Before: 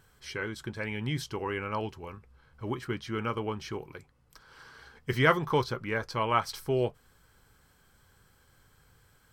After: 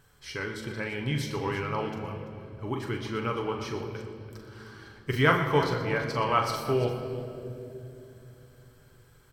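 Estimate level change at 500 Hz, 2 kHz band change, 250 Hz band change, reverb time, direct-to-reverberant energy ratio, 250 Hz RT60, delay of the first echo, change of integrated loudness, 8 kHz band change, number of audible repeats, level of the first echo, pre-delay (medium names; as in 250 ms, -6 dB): +2.5 dB, +2.0 dB, +2.5 dB, 2.9 s, 2.0 dB, 4.1 s, 41 ms, +2.0 dB, +1.5 dB, 3, -8.0 dB, 7 ms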